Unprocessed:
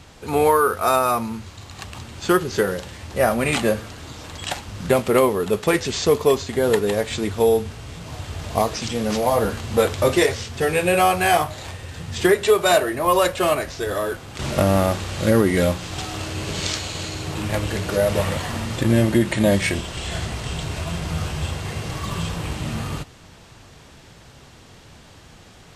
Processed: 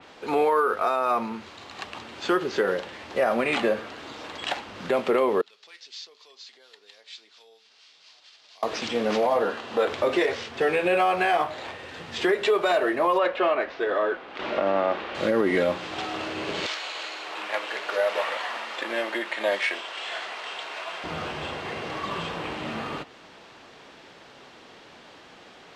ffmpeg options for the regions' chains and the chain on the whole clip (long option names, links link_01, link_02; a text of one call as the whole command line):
ffmpeg -i in.wav -filter_complex "[0:a]asettb=1/sr,asplit=3[link_01][link_02][link_03];[link_01]atrim=end=5.414[link_04];[link_02]atrim=start=5.41:end=8.63,asetpts=PTS-STARTPTS,afade=type=in:duration=0.004:curve=qsin,afade=type=out:start_time=3.216:duration=0.004:curve=qsin,acompressor=threshold=-31dB:ratio=2.5:attack=3.2:release=140:knee=1:detection=peak,bandpass=frequency=4800:width_type=q:width=2.2,acrossover=split=1000[link_05][link_06];[link_05]aeval=exprs='val(0)*(1-0.5/2+0.5/2*cos(2*PI*4.3*n/s))':channel_layout=same[link_07];[link_06]aeval=exprs='val(0)*(1-0.5/2-0.5/2*cos(2*PI*4.3*n/s))':channel_layout=same[link_08];[link_07][link_08]amix=inputs=2:normalize=0[link_09];[link_03]atrim=start=8.626[link_10];[link_04][link_09]acrossfade=duration=0.004:curve1=hsin:curve2=qsin[link_11];[link_11][link_10]acrossfade=duration=0.004:curve1=qsin:curve2=hsin,asettb=1/sr,asplit=3[link_12][link_13][link_14];[link_12]atrim=end=9.424[link_15];[link_13]atrim=start=9.42:end=9.87,asetpts=PTS-STARTPTS,afade=type=in:duration=0.004:curve=qsin,afade=type=out:start_time=0.446:duration=0.004:curve=qsin,highpass=frequency=300:poles=1,highshelf=frequency=8200:gain=-5.5,bandreject=frequency=2200:width=8.4[link_16];[link_14]atrim=start=9.866[link_17];[link_15][link_16]acrossfade=duration=0.004:curve1=hsin:curve2=qsin[link_18];[link_18][link_17]acrossfade=duration=0.004:curve1=qsin:curve2=hsin,asettb=1/sr,asplit=3[link_19][link_20][link_21];[link_19]atrim=end=13.184[link_22];[link_20]atrim=start=13.18:end=15.15,asetpts=PTS-STARTPTS,afade=type=in:duration=0.004:curve=qsin,afade=type=out:start_time=1.966:duration=0.004:curve=qsin,lowpass=3100,equalizer=frequency=110:width=0.99:gain=-12.5[link_23];[link_21]atrim=start=15.146[link_24];[link_22][link_23]acrossfade=duration=0.004:curve1=hsin:curve2=qsin[link_25];[link_25][link_24]acrossfade=duration=0.004:curve1=qsin:curve2=hsin,asettb=1/sr,asplit=3[link_26][link_27][link_28];[link_26]atrim=end=16.664[link_29];[link_27]atrim=start=16.66:end=21.04,asetpts=PTS-STARTPTS,afade=type=in:duration=0.004:curve=qsin,afade=type=out:start_time=4.376:duration=0.004:curve=qsin,highpass=750,volume=8dB,asoftclip=hard,volume=-8dB[link_30];[link_28]atrim=start=21.036[link_31];[link_29][link_30]acrossfade=duration=0.004:curve1=hsin:curve2=qsin[link_32];[link_32][link_31]acrossfade=duration=0.004:curve1=qsin:curve2=hsin,acrossover=split=240 4800:gain=0.0708 1 0.141[link_33][link_34][link_35];[link_33][link_34][link_35]amix=inputs=3:normalize=0,alimiter=limit=-15dB:level=0:latency=1:release=75,adynamicequalizer=threshold=0.00631:dfrequency=3500:dqfactor=0.7:tfrequency=3500:tqfactor=0.7:attack=5:release=100:ratio=0.375:range=2.5:mode=cutabove:tftype=highshelf,volume=1.5dB" out.wav